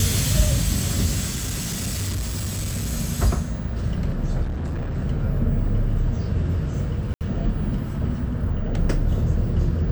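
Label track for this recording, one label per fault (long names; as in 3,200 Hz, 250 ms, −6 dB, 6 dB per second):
1.340000	2.930000	clipping −22.5 dBFS
4.420000	4.980000	clipping −23.5 dBFS
7.140000	7.210000	drop-out 68 ms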